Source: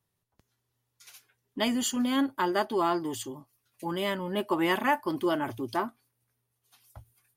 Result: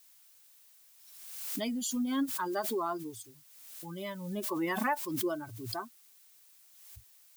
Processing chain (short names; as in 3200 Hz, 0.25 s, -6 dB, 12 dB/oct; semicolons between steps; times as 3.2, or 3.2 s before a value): per-bin expansion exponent 2; bell 2800 Hz -7.5 dB 0.4 oct; added noise blue -57 dBFS; backwards sustainer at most 42 dB/s; gain -3.5 dB